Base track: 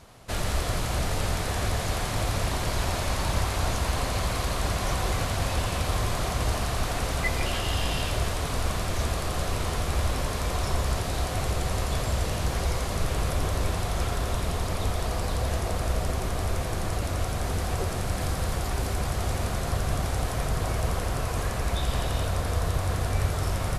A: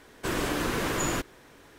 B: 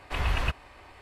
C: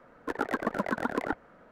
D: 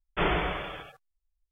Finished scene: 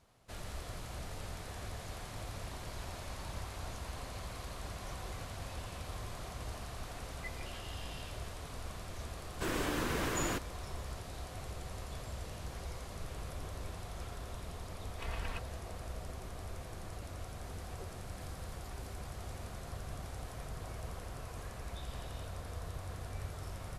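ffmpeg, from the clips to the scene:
ffmpeg -i bed.wav -i cue0.wav -i cue1.wav -filter_complex "[0:a]volume=-16.5dB[link_01];[2:a]aecho=1:1:4.4:0.49[link_02];[1:a]atrim=end=1.78,asetpts=PTS-STARTPTS,volume=-6.5dB,afade=type=in:duration=0.004:curve=hsin,afade=type=out:start_time=1.776:duration=0.004:curve=hsin,adelay=9170[link_03];[link_02]atrim=end=1.01,asetpts=PTS-STARTPTS,volume=-14dB,afade=type=in:duration=0.004:curve=hsin,afade=type=out:start_time=1.006:duration=0.004:curve=hsin,adelay=14880[link_04];[link_01][link_03][link_04]amix=inputs=3:normalize=0" out.wav

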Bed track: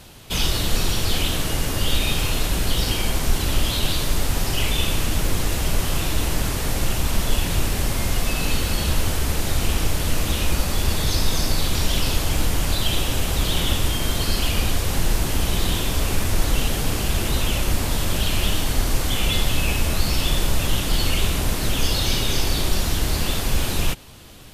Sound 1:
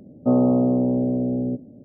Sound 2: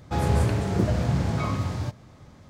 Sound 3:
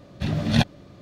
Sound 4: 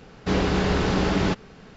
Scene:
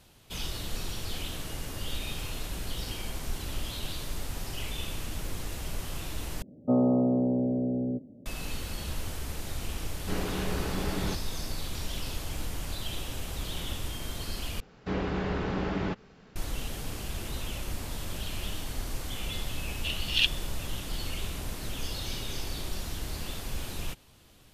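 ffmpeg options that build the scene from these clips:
ffmpeg -i bed.wav -i cue0.wav -i cue1.wav -i cue2.wav -i cue3.wav -filter_complex "[4:a]asplit=2[link_01][link_02];[0:a]volume=-14dB[link_03];[link_02]acrossover=split=3200[link_04][link_05];[link_05]acompressor=threshold=-48dB:ratio=4:attack=1:release=60[link_06];[link_04][link_06]amix=inputs=2:normalize=0[link_07];[3:a]highpass=frequency=2900:width_type=q:width=13[link_08];[link_03]asplit=3[link_09][link_10][link_11];[link_09]atrim=end=6.424[link_12];[1:a]atrim=end=1.84,asetpts=PTS-STARTPTS,volume=-6dB[link_13];[link_10]atrim=start=8.256:end=14.604[link_14];[link_07]atrim=end=1.76,asetpts=PTS-STARTPTS,volume=-8.5dB[link_15];[link_11]atrim=start=16.356[link_16];[link_01]atrim=end=1.76,asetpts=PTS-STARTPTS,volume=-11dB,afade=type=in:duration=0.004:curve=hsin,afade=type=out:start_time=1.756:duration=0.004:curve=hsin,adelay=9810[link_17];[link_08]atrim=end=1.01,asetpts=PTS-STARTPTS,volume=-6.5dB,afade=type=in:duration=0.004:curve=hsin,afade=type=out:start_time=1.006:duration=0.004:curve=hsin,adelay=19630[link_18];[link_12][link_13]acrossfade=duration=0.004:curve1=hsin:curve2=hsin[link_19];[link_19][link_14]acrossfade=duration=0.004:curve1=hsin:curve2=hsin[link_20];[link_20][link_15]acrossfade=duration=0.004:curve1=hsin:curve2=hsin[link_21];[link_21][link_16]acrossfade=duration=0.004:curve1=hsin:curve2=hsin[link_22];[link_22][link_17][link_18]amix=inputs=3:normalize=0" out.wav

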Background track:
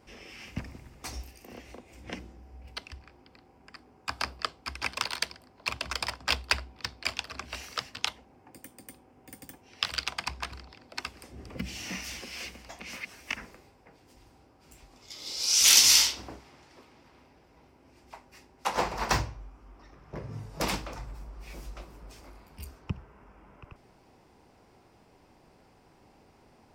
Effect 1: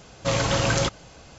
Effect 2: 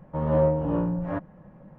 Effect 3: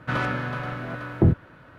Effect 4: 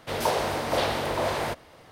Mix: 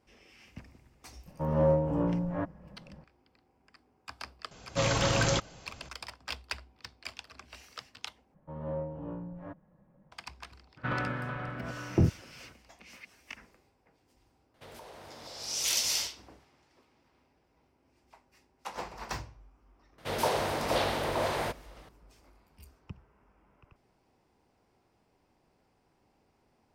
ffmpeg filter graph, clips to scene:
ffmpeg -i bed.wav -i cue0.wav -i cue1.wav -i cue2.wav -i cue3.wav -filter_complex "[2:a]asplit=2[link_01][link_02];[4:a]asplit=2[link_03][link_04];[0:a]volume=-11dB[link_05];[3:a]lowpass=3300[link_06];[link_03]acompressor=threshold=-30dB:ratio=6:attack=3.2:release=140:knee=1:detection=peak[link_07];[link_05]asplit=2[link_08][link_09];[link_08]atrim=end=8.344[link_10];[link_02]atrim=end=1.78,asetpts=PTS-STARTPTS,volume=-14.5dB[link_11];[link_09]atrim=start=10.116[link_12];[link_01]atrim=end=1.78,asetpts=PTS-STARTPTS,volume=-3.5dB,afade=type=in:duration=0.004:curve=hsin,afade=type=out:start_time=1.776:duration=0.004:curve=hsin,adelay=1260[link_13];[1:a]atrim=end=1.38,asetpts=PTS-STARTPTS,volume=-4.5dB,afade=type=in:duration=0.004:curve=hsin,afade=type=out:start_time=1.376:duration=0.004:curve=hsin,adelay=4510[link_14];[link_06]atrim=end=1.78,asetpts=PTS-STARTPTS,volume=-6.5dB,afade=type=in:duration=0.02,afade=type=out:start_time=1.76:duration=0.02,adelay=10760[link_15];[link_07]atrim=end=1.91,asetpts=PTS-STARTPTS,volume=-15.5dB,afade=type=in:duration=0.004:curve=hsin,afade=type=out:start_time=1.906:duration=0.004:curve=hsin,adelay=14540[link_16];[link_04]atrim=end=1.91,asetpts=PTS-STARTPTS,volume=-3.5dB,afade=type=in:duration=0.004:curve=hsin,afade=type=out:start_time=1.906:duration=0.004:curve=hsin,adelay=19980[link_17];[link_10][link_11]acrossfade=duration=0.004:curve1=hsin:curve2=hsin[link_18];[link_18][link_12]acrossfade=duration=0.004:curve1=hsin:curve2=hsin[link_19];[link_19][link_13][link_14][link_15][link_16][link_17]amix=inputs=6:normalize=0" out.wav

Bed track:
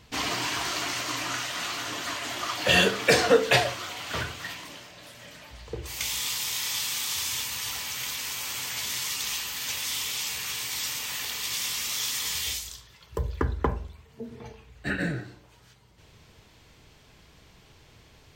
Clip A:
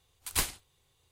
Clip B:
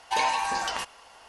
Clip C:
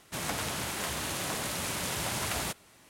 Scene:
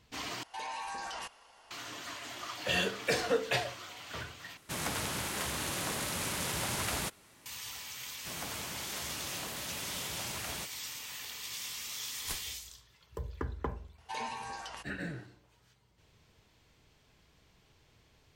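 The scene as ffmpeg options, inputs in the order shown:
ffmpeg -i bed.wav -i cue0.wav -i cue1.wav -i cue2.wav -filter_complex "[2:a]asplit=2[link_01][link_02];[1:a]asplit=2[link_03][link_04];[3:a]asplit=2[link_05][link_06];[0:a]volume=-10.5dB[link_07];[link_01]alimiter=limit=-24dB:level=0:latency=1:release=12[link_08];[link_03]acompressor=threshold=-43dB:ratio=6:attack=3.2:release=140:knee=1:detection=peak[link_09];[link_05]equalizer=frequency=690:width_type=o:width=0.37:gain=-2.5[link_10];[link_07]asplit=3[link_11][link_12][link_13];[link_11]atrim=end=0.434[link_14];[link_08]atrim=end=1.28,asetpts=PTS-STARTPTS,volume=-8dB[link_15];[link_12]atrim=start=1.706:end=4.574[link_16];[link_10]atrim=end=2.89,asetpts=PTS-STARTPTS,volume=-1.5dB[link_17];[link_13]atrim=start=7.456[link_18];[link_09]atrim=end=1.11,asetpts=PTS-STARTPTS,volume=-8dB,afade=type=in:duration=0.004:curve=hsin,afade=type=out:start_time=1.106:duration=0.004:curve=hsin,adelay=2810[link_19];[link_06]atrim=end=2.89,asetpts=PTS-STARTPTS,volume=-8.5dB,afade=type=in:duration=0.004:curve=hsin,afade=type=out:start_time=2.886:duration=0.004:curve=hsin,adelay=8130[link_20];[link_04]atrim=end=1.11,asetpts=PTS-STARTPTS,volume=-11dB,afade=type=in:duration=0.004:curve=hsin,afade=type=out:start_time=1.106:duration=0.004:curve=hsin,adelay=11920[link_21];[link_02]atrim=end=1.28,asetpts=PTS-STARTPTS,volume=-14dB,afade=type=in:duration=0.004:curve=hsin,afade=type=out:start_time=1.276:duration=0.004:curve=hsin,adelay=13980[link_22];[link_14][link_15]acrossfade=duration=0.004:curve1=hsin:curve2=hsin[link_23];[link_23][link_16]acrossfade=duration=0.004:curve1=hsin:curve2=hsin[link_24];[link_24][link_17]acrossfade=duration=0.004:curve1=hsin:curve2=hsin[link_25];[link_25][link_18]acrossfade=duration=0.004:curve1=hsin:curve2=hsin[link_26];[link_26][link_19][link_20][link_21][link_22]amix=inputs=5:normalize=0" out.wav

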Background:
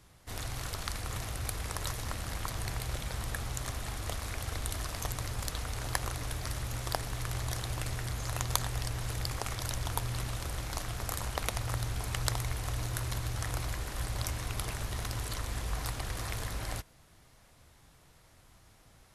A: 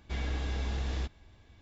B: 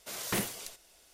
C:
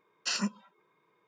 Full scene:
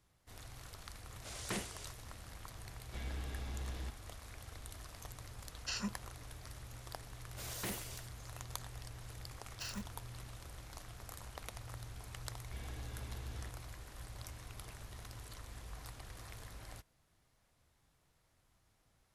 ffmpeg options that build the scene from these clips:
ffmpeg -i bed.wav -i cue0.wav -i cue1.wav -i cue2.wav -filter_complex "[2:a]asplit=2[link_01][link_02];[1:a]asplit=2[link_03][link_04];[3:a]asplit=2[link_05][link_06];[0:a]volume=-14dB[link_07];[link_01]lowpass=frequency=10000:width=0.5412,lowpass=frequency=10000:width=1.3066[link_08];[link_03]asoftclip=type=tanh:threshold=-27.5dB[link_09];[link_02]asoftclip=type=tanh:threshold=-30.5dB[link_10];[link_06]acrusher=bits=2:mode=log:mix=0:aa=0.000001[link_11];[link_08]atrim=end=1.13,asetpts=PTS-STARTPTS,volume=-7.5dB,afade=type=in:duration=0.004:curve=hsin,afade=type=out:start_time=1.126:duration=0.004:curve=hsin,adelay=1180[link_12];[link_09]atrim=end=1.61,asetpts=PTS-STARTPTS,volume=-8dB,afade=type=in:duration=0.004:curve=hsin,afade=type=out:start_time=1.606:duration=0.004:curve=hsin,adelay=2830[link_13];[link_05]atrim=end=1.27,asetpts=PTS-STARTPTS,volume=-8.5dB,afade=type=in:duration=0.004:curve=hsin,afade=type=out:start_time=1.266:duration=0.004:curve=hsin,adelay=238581S[link_14];[link_10]atrim=end=1.13,asetpts=PTS-STARTPTS,volume=-6dB,afade=type=in:duration=0.004:curve=hsin,afade=type=out:start_time=1.126:duration=0.004:curve=hsin,adelay=7310[link_15];[link_11]atrim=end=1.27,asetpts=PTS-STARTPTS,volume=-14dB,afade=type=in:duration=0.004:curve=hsin,afade=type=out:start_time=1.266:duration=0.004:curve=hsin,adelay=9340[link_16];[link_04]atrim=end=1.61,asetpts=PTS-STARTPTS,volume=-14dB,afade=type=in:duration=0.004:curve=hsin,afade=type=out:start_time=1.606:duration=0.004:curve=hsin,adelay=12420[link_17];[link_07][link_12][link_13][link_14][link_15][link_16][link_17]amix=inputs=7:normalize=0" out.wav

